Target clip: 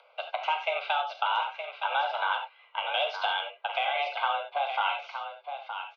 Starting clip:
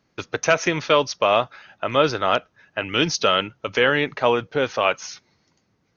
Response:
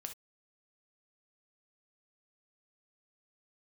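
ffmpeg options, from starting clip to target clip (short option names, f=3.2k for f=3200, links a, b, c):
-filter_complex "[0:a]highpass=f=260:t=q:w=0.5412,highpass=f=260:t=q:w=1.307,lowpass=f=3.3k:t=q:w=0.5176,lowpass=f=3.3k:t=q:w=0.7071,lowpass=f=3.3k:t=q:w=1.932,afreqshift=280,acompressor=threshold=-22dB:ratio=6,aecho=1:1:918:0.376[a];[1:a]atrim=start_sample=2205,asetrate=34839,aresample=44100[b];[a][b]afir=irnorm=-1:irlink=0,acompressor=mode=upward:threshold=-48dB:ratio=2.5,asuperstop=centerf=1800:order=8:qfactor=4.1"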